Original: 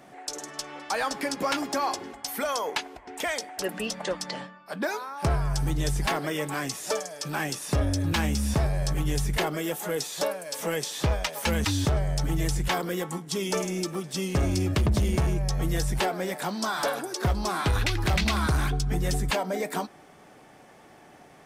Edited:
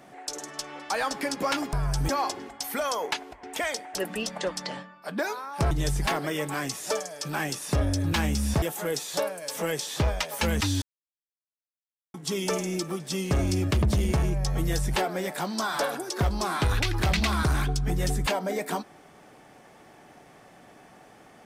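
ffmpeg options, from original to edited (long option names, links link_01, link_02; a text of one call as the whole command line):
ffmpeg -i in.wav -filter_complex "[0:a]asplit=7[link_01][link_02][link_03][link_04][link_05][link_06][link_07];[link_01]atrim=end=1.732[link_08];[link_02]atrim=start=5.348:end=5.712[link_09];[link_03]atrim=start=1.728:end=5.352[link_10];[link_04]atrim=start=5.708:end=8.622[link_11];[link_05]atrim=start=9.658:end=11.86,asetpts=PTS-STARTPTS,afade=type=out:start_time=2.198:duration=0.004:curve=hsin[link_12];[link_06]atrim=start=11.86:end=13.18,asetpts=PTS-STARTPTS,volume=0[link_13];[link_07]atrim=start=13.18,asetpts=PTS-STARTPTS,afade=type=in:duration=0.004:curve=hsin[link_14];[link_08][link_09]acrossfade=duration=0.004:curve1=hsin:curve2=hsin[link_15];[link_15][link_10]acrossfade=duration=0.004:curve1=hsin:curve2=hsin[link_16];[link_16][link_11]acrossfade=duration=0.004:curve1=hsin:curve2=hsin[link_17];[link_12][link_13][link_14]concat=n=3:v=0:a=1[link_18];[link_17][link_18]acrossfade=duration=0.004:curve1=hsin:curve2=hsin" out.wav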